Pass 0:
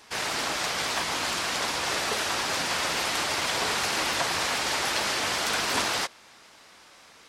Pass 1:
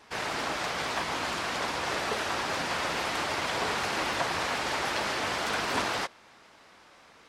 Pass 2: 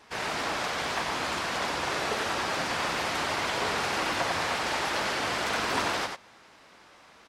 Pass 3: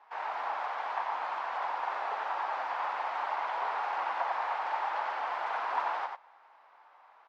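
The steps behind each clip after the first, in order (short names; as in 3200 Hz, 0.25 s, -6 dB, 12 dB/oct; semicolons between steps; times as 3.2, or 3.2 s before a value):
high shelf 3400 Hz -11 dB
echo 92 ms -5.5 dB
ladder band-pass 980 Hz, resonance 55%; gain +6 dB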